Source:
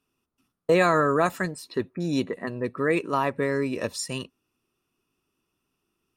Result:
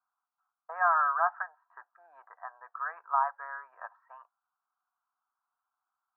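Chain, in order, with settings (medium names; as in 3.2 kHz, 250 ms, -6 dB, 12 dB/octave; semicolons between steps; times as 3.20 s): Chebyshev band-pass 720–1600 Hz, order 4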